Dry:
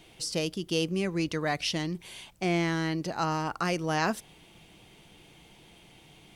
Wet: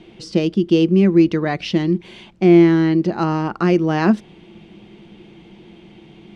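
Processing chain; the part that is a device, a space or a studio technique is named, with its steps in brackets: inside a cardboard box (LPF 3600 Hz 12 dB/oct; small resonant body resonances 210/340 Hz, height 15 dB, ringing for 65 ms); gain +5.5 dB

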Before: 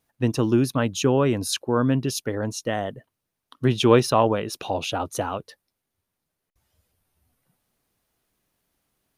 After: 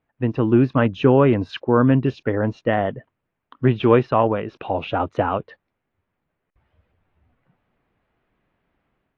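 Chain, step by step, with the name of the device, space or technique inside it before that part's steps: action camera in a waterproof case (LPF 2500 Hz 24 dB/oct; AGC gain up to 7 dB; AAC 48 kbps 24000 Hz)

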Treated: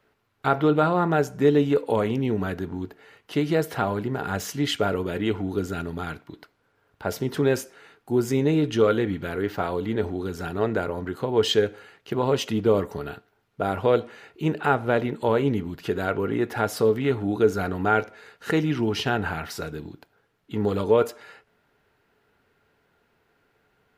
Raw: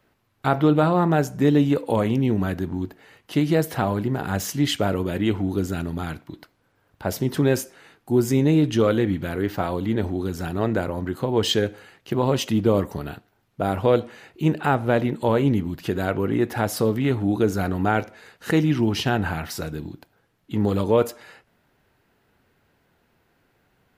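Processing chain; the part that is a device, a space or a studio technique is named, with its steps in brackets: low shelf 480 Hz -5.5 dB; inside a helmet (high shelf 6000 Hz -7 dB; small resonant body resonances 430/1400 Hz, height 9 dB, ringing for 90 ms)

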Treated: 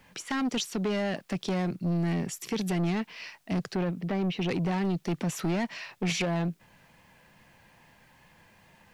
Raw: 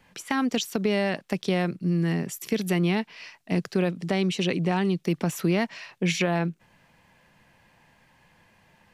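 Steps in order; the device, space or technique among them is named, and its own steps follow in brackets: 3.75–4.48 air absorption 290 m; compact cassette (soft clip -25 dBFS, distortion -9 dB; LPF 9200 Hz 12 dB/oct; wow and flutter 29 cents; white noise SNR 41 dB); gain +1 dB

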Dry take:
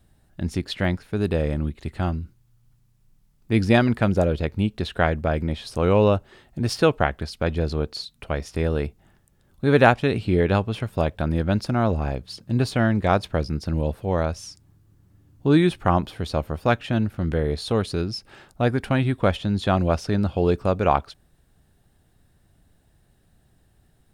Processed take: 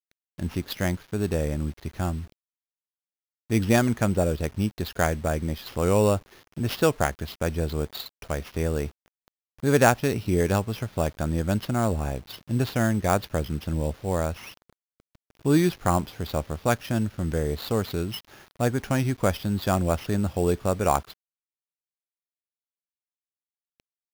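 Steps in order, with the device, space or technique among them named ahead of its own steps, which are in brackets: early 8-bit sampler (sample-rate reducer 8200 Hz, jitter 0%; bit-crush 8-bit); gain -3 dB

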